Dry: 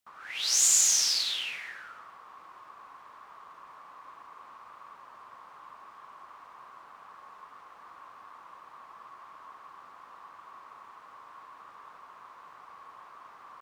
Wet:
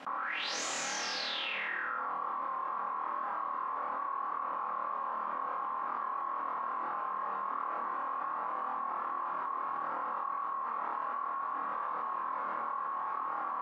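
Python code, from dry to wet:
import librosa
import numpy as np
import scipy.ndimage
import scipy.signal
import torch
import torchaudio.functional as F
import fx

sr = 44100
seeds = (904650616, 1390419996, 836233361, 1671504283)

y = scipy.signal.sosfilt(scipy.signal.butter(4, 170.0, 'highpass', fs=sr, output='sos'), x)
y = fx.dereverb_blind(y, sr, rt60_s=0.71)
y = scipy.signal.sosfilt(scipy.signal.butter(2, 1200.0, 'lowpass', fs=sr, output='sos'), y)
y = fx.peak_eq(y, sr, hz=330.0, db=-3.5, octaves=2.2)
y = y + 0.33 * np.pad(y, (int(3.7 * sr / 1000.0), 0))[:len(y)]
y = fx.room_flutter(y, sr, wall_m=4.4, rt60_s=0.75)
y = fx.env_flatten(y, sr, amount_pct=100)
y = y * 10.0 ** (8.5 / 20.0)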